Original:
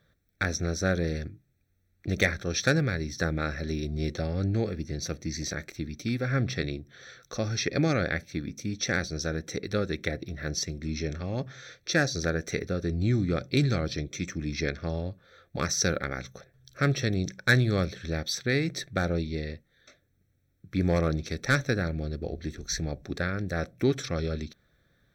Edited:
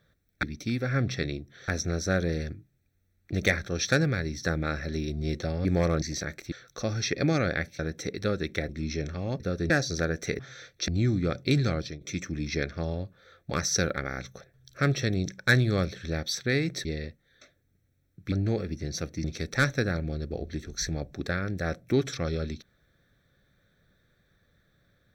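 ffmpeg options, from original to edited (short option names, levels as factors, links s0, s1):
-filter_complex "[0:a]asplit=18[s0][s1][s2][s3][s4][s5][s6][s7][s8][s9][s10][s11][s12][s13][s14][s15][s16][s17];[s0]atrim=end=0.432[s18];[s1]atrim=start=5.818:end=7.072[s19];[s2]atrim=start=0.428:end=4.402[s20];[s3]atrim=start=20.778:end=21.152[s21];[s4]atrim=start=5.318:end=5.822[s22];[s5]atrim=start=7.068:end=8.342[s23];[s6]atrim=start=9.278:end=10.182[s24];[s7]atrim=start=10.748:end=11.462[s25];[s8]atrim=start=12.638:end=12.942[s26];[s9]atrim=start=11.948:end=12.642[s27];[s10]atrim=start=11.458:end=11.952[s28];[s11]atrim=start=12.938:end=14.07,asetpts=PTS-STARTPTS,afade=t=out:st=0.872:d=0.26:silence=0.211349[s29];[s12]atrim=start=14.07:end=16.182,asetpts=PTS-STARTPTS,afade=t=in:d=0.004:c=hsin:silence=0.211349[s30];[s13]atrim=start=16.148:end=16.182[s31];[s14]atrim=start=16.148:end=18.852[s32];[s15]atrim=start=19.308:end=20.782[s33];[s16]atrim=start=4.398:end=5.322[s34];[s17]atrim=start=21.148[s35];[s18][s19]acrossfade=d=0.004:c1=hsin:c2=hsin[s36];[s36][s20]acrossfade=d=0.004:c1=hsin:c2=hsin[s37];[s37][s21]acrossfade=d=0.004:c1=hsin:c2=hsin[s38];[s38][s22]acrossfade=d=0.004:c1=hsin:c2=hsin[s39];[s39][s23]acrossfade=d=0.004:c1=hsin:c2=hsin[s40];[s40][s24]acrossfade=d=0.004:c1=hsin:c2=hsin[s41];[s41][s25]acrossfade=d=0.004:c1=hsin:c2=hsin[s42];[s42][s26]acrossfade=d=0.004:c1=hsin:c2=hsin[s43];[s43][s27]acrossfade=d=0.004:c1=hsin:c2=hsin[s44];[s44][s28]acrossfade=d=0.004:c1=hsin:c2=hsin[s45];[s29][s30]concat=n=2:v=0:a=1[s46];[s45][s46]acrossfade=d=0.004:c1=hsin:c2=hsin[s47];[s47][s31]acrossfade=d=0.004:c1=hsin:c2=hsin[s48];[s48][s32]acrossfade=d=0.004:c1=hsin:c2=hsin[s49];[s49][s33]acrossfade=d=0.004:c1=hsin:c2=hsin[s50];[s50][s34]acrossfade=d=0.004:c1=hsin:c2=hsin[s51];[s51][s35]acrossfade=d=0.004:c1=hsin:c2=hsin"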